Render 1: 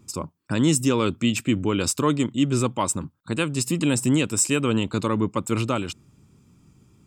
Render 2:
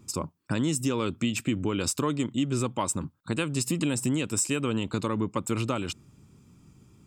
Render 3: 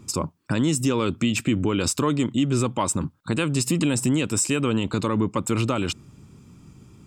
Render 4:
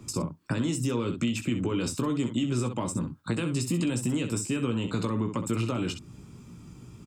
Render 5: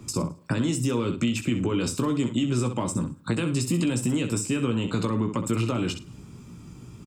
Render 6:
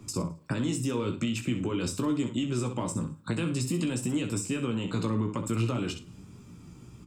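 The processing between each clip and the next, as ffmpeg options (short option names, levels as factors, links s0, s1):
-af "acompressor=threshold=0.0631:ratio=4"
-filter_complex "[0:a]highshelf=f=9600:g=-5.5,asplit=2[s0][s1];[s1]alimiter=limit=0.075:level=0:latency=1:release=13,volume=1.33[s2];[s0][s2]amix=inputs=2:normalize=0"
-filter_complex "[0:a]aecho=1:1:17|64:0.501|0.316,acrossover=split=100|370[s0][s1][s2];[s0]acompressor=threshold=0.00631:ratio=4[s3];[s1]acompressor=threshold=0.0398:ratio=4[s4];[s2]acompressor=threshold=0.0178:ratio=4[s5];[s3][s4][s5]amix=inputs=3:normalize=0"
-af "aecho=1:1:106|212:0.0794|0.0246,volume=1.41"
-af "flanger=delay=9.9:depth=9.3:regen=65:speed=0.47:shape=sinusoidal"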